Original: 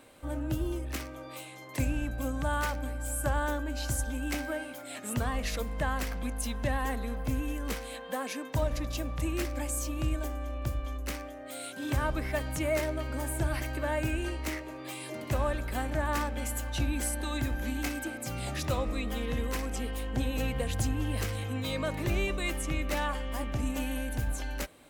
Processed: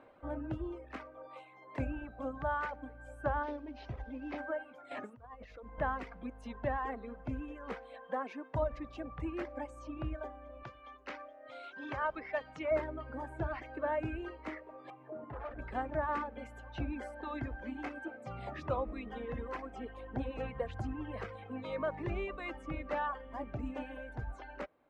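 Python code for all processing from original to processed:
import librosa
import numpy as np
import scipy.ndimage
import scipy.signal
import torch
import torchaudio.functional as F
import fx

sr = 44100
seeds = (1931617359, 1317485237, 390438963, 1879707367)

y = fx.chain(x, sr, fx.cvsd(bps=32000),
    fx.peak_eq(hz=1400.0, db=-7.5, octaves=0.6), at=(3.43, 4.38))
y = fx.chain(y, sr, fx.highpass(hz=46.0, slope=12),
    fx.peak_eq(hz=170.0, db=-6.0, octaves=0.34),
    fx.over_compress(threshold_db=-42.0, ratio=-1.0), at=(4.91, 5.78))
y = fx.chain(y, sr, fx.lowpass(hz=6000.0, slope=24),
    fx.tilt_eq(slope=3.0),
    fx.echo_single(ms=824, db=-22.0), at=(10.63, 12.71))
y = fx.chain(y, sr, fx.lowpass(hz=1500.0, slope=12),
    fx.clip_hard(threshold_db=-34.5),
    fx.notch_comb(f0_hz=190.0), at=(14.9, 15.59))
y = scipy.signal.sosfilt(scipy.signal.butter(2, 1200.0, 'lowpass', fs=sr, output='sos'), y)
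y = fx.dereverb_blind(y, sr, rt60_s=1.9)
y = fx.low_shelf(y, sr, hz=350.0, db=-11.5)
y = y * 10.0 ** (3.0 / 20.0)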